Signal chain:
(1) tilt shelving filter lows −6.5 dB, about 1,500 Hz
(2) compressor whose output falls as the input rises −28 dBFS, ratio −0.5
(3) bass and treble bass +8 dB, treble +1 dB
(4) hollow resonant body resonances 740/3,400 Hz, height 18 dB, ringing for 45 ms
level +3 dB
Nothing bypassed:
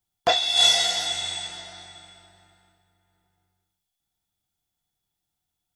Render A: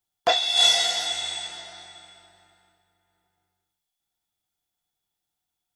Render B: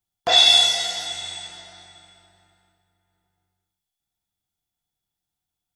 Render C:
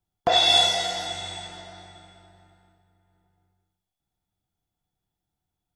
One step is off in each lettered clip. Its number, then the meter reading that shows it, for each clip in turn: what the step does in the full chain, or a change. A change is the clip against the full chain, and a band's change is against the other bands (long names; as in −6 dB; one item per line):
3, 125 Hz band −7.0 dB
2, change in momentary loudness spread +3 LU
1, 8 kHz band −8.0 dB